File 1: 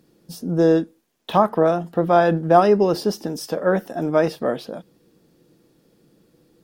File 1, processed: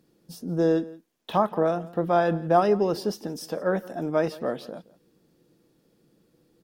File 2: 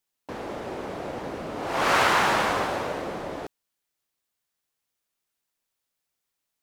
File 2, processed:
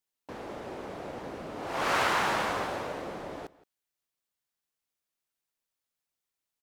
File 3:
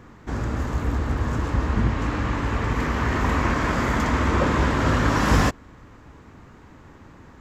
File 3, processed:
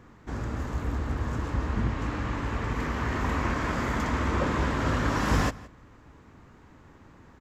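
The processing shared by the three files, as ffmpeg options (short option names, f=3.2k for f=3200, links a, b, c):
-filter_complex "[0:a]asplit=2[a][b];[b]adelay=169.1,volume=-20dB,highshelf=f=4k:g=-3.8[c];[a][c]amix=inputs=2:normalize=0,volume=-6dB"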